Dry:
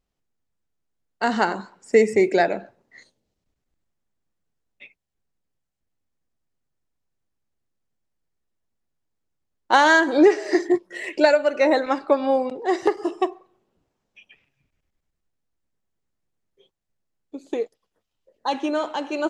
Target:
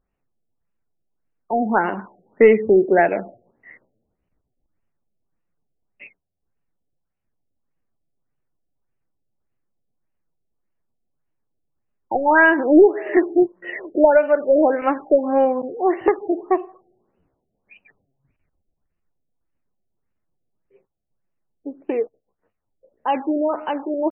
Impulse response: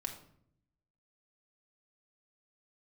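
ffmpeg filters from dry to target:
-filter_complex "[0:a]asplit=2[s0][s1];[s1]aeval=exprs='clip(val(0),-1,0.2)':c=same,volume=0.316[s2];[s0][s2]amix=inputs=2:normalize=0,atempo=0.8,aresample=16000,aresample=44100,afftfilt=real='re*lt(b*sr/1024,740*pow(3100/740,0.5+0.5*sin(2*PI*1.7*pts/sr)))':imag='im*lt(b*sr/1024,740*pow(3100/740,0.5+0.5*sin(2*PI*1.7*pts/sr)))':win_size=1024:overlap=0.75,volume=1.12"

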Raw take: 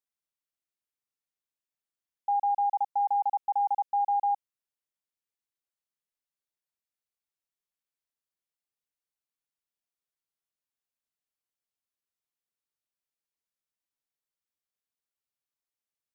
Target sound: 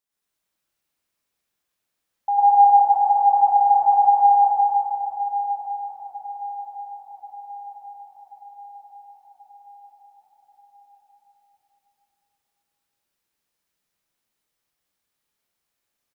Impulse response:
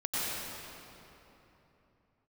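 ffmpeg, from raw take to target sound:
-filter_complex "[0:a]aecho=1:1:1084|2168|3252|4336|5420|6504:0.168|0.0957|0.0545|0.0311|0.0177|0.0101[s0];[1:a]atrim=start_sample=2205[s1];[s0][s1]afir=irnorm=-1:irlink=0,volume=2.11"

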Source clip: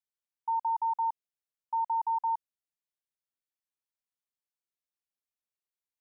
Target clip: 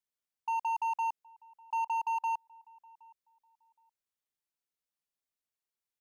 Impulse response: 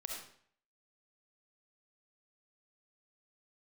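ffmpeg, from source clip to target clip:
-filter_complex "[0:a]volume=28.2,asoftclip=hard,volume=0.0355,asplit=2[s0][s1];[s1]adelay=769,lowpass=f=890:p=1,volume=0.0794,asplit=2[s2][s3];[s3]adelay=769,lowpass=f=890:p=1,volume=0.31[s4];[s2][s4]amix=inputs=2:normalize=0[s5];[s0][s5]amix=inputs=2:normalize=0"

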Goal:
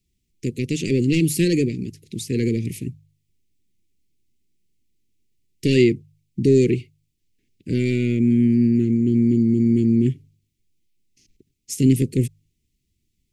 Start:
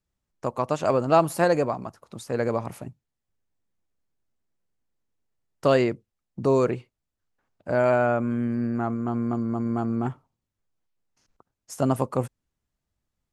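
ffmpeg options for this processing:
-af "aeval=exprs='0.501*(cos(1*acos(clip(val(0)/0.501,-1,1)))-cos(1*PI/2))+0.0501*(cos(5*acos(clip(val(0)/0.501,-1,1)))-cos(5*PI/2))':c=same,asuperstop=centerf=920:order=12:qfactor=0.54,bandreject=f=50.22:t=h:w=4,bandreject=f=100.44:t=h:w=4,bandreject=f=150.66:t=h:w=4,volume=2.11"

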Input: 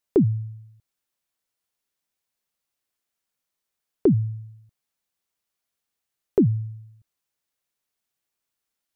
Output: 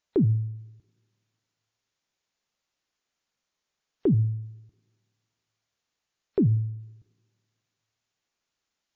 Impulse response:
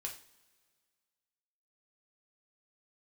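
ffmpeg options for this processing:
-filter_complex "[0:a]alimiter=limit=0.1:level=0:latency=1,asplit=2[s0][s1];[1:a]atrim=start_sample=2205,adelay=13[s2];[s1][s2]afir=irnorm=-1:irlink=0,volume=0.211[s3];[s0][s3]amix=inputs=2:normalize=0,volume=1.5" -ar 16000 -c:a wmav2 -b:a 64k

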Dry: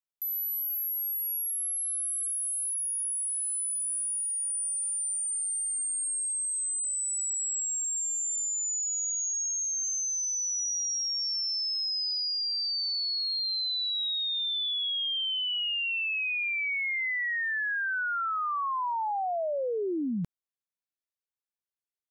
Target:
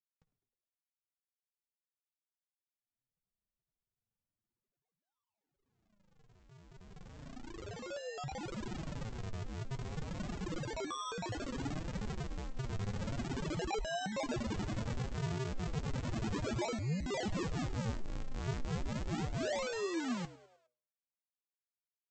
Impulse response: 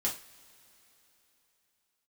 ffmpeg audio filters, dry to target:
-filter_complex "[0:a]afftfilt=real='re*gte(hypot(re,im),0.00501)':imag='im*gte(hypot(re,im),0.00501)':win_size=1024:overlap=0.75,equalizer=f=77:t=o:w=2.4:g=-3.5,bandreject=f=66.68:t=h:w=4,bandreject=f=133.36:t=h:w=4,acrossover=split=250|3600[s0][s1][s2];[s2]acompressor=threshold=0.00794:ratio=6[s3];[s0][s1][s3]amix=inputs=3:normalize=0,asoftclip=type=tanh:threshold=0.0158,aresample=16000,acrusher=samples=34:mix=1:aa=0.000001:lfo=1:lforange=54.4:lforate=0.34,aresample=44100,flanger=delay=4.7:depth=5.4:regen=45:speed=0.58:shape=triangular,asplit=5[s4][s5][s6][s7][s8];[s5]adelay=103,afreqshift=120,volume=0.106[s9];[s6]adelay=206,afreqshift=240,volume=0.0562[s10];[s7]adelay=309,afreqshift=360,volume=0.0299[s11];[s8]adelay=412,afreqshift=480,volume=0.0158[s12];[s4][s9][s10][s11][s12]amix=inputs=5:normalize=0,volume=1.78"

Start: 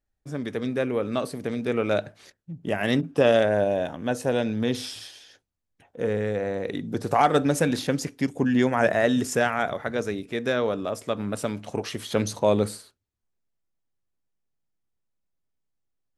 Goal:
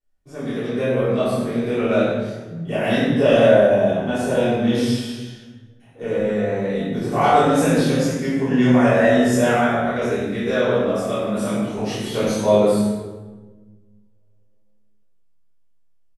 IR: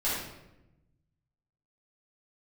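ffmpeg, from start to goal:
-filter_complex "[0:a]asplit=2[s0][s1];[s1]adelay=25,volume=0.75[s2];[s0][s2]amix=inputs=2:normalize=0[s3];[1:a]atrim=start_sample=2205,asetrate=29547,aresample=44100[s4];[s3][s4]afir=irnorm=-1:irlink=0,volume=0.376"

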